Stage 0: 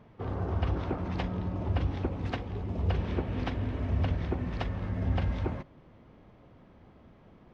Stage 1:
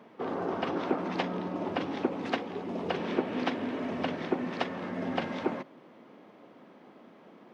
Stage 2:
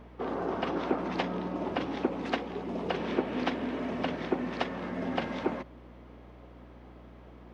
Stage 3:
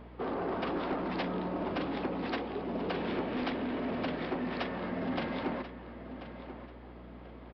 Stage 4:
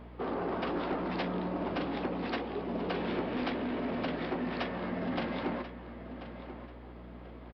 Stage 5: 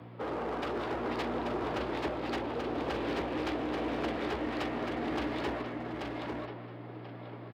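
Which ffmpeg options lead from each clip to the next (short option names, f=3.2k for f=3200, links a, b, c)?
-af "highpass=f=220:w=0.5412,highpass=f=220:w=1.3066,volume=5.5dB"
-af "aeval=exprs='val(0)+0.00282*(sin(2*PI*60*n/s)+sin(2*PI*2*60*n/s)/2+sin(2*PI*3*60*n/s)/3+sin(2*PI*4*60*n/s)/4+sin(2*PI*5*60*n/s)/5)':c=same"
-filter_complex "[0:a]aresample=11025,asoftclip=type=tanh:threshold=-29dB,aresample=44100,asplit=2[a][b];[b]adelay=1037,lowpass=f=4.2k:p=1,volume=-12dB,asplit=2[c][d];[d]adelay=1037,lowpass=f=4.2k:p=1,volume=0.32,asplit=2[e][f];[f]adelay=1037,lowpass=f=4.2k:p=1,volume=0.32[g];[a][c][e][g]amix=inputs=4:normalize=0,volume=1dB"
-filter_complex "[0:a]asplit=2[a][b];[b]adelay=17,volume=-12.5dB[c];[a][c]amix=inputs=2:normalize=0"
-af "aeval=exprs='clip(val(0),-1,0.0178)':c=same,afreqshift=59,aecho=1:1:834:0.668"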